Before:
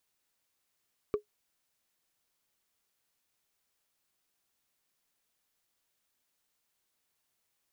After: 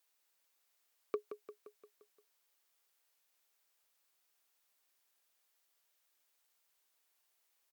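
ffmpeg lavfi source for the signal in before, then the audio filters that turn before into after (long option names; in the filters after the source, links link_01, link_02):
-f lavfi -i "aevalsrc='0.0891*pow(10,-3*t/0.11)*sin(2*PI*418*t)+0.0251*pow(10,-3*t/0.033)*sin(2*PI*1152.4*t)+0.00708*pow(10,-3*t/0.015)*sin(2*PI*2258.9*t)+0.002*pow(10,-3*t/0.008)*sin(2*PI*3734*t)+0.000562*pow(10,-3*t/0.005)*sin(2*PI*5576.1*t)':duration=0.45:sample_rate=44100"
-filter_complex "[0:a]highpass=430,equalizer=frequency=16000:width=2.6:gain=6.5,asplit=2[link_01][link_02];[link_02]aecho=0:1:174|348|522|696|870|1044:0.316|0.177|0.0992|0.0555|0.0311|0.0174[link_03];[link_01][link_03]amix=inputs=2:normalize=0"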